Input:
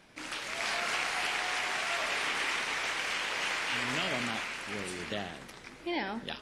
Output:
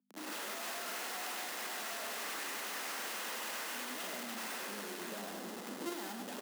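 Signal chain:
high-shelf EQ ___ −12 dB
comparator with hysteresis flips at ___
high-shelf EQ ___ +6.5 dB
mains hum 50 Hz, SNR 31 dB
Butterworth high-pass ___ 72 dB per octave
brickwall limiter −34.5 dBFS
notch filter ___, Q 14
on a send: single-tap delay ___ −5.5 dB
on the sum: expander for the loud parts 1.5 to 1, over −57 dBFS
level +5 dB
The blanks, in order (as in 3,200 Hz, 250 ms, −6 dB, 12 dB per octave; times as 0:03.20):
2,400 Hz, −51.5 dBFS, 5,200 Hz, 190 Hz, 2,300 Hz, 101 ms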